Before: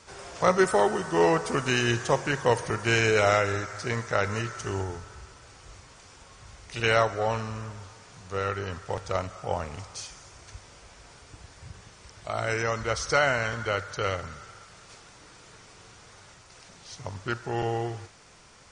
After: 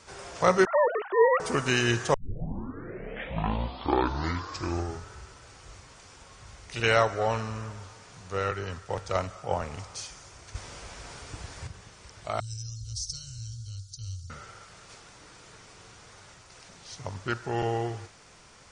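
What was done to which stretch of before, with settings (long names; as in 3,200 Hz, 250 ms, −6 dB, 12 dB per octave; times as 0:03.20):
0:00.65–0:01.40: three sine waves on the formant tracks
0:02.14: tape start 2.94 s
0:08.51–0:09.62: multiband upward and downward expander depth 40%
0:10.55–0:11.67: clip gain +7 dB
0:12.40–0:14.30: elliptic band-stop filter 110–4,700 Hz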